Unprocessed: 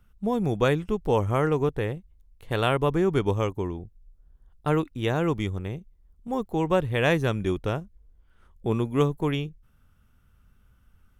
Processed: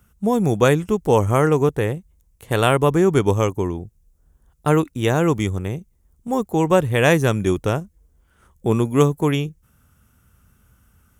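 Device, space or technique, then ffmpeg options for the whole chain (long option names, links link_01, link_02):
budget condenser microphone: -af "highpass=62,highshelf=frequency=5400:width_type=q:width=1.5:gain=7,volume=7dB"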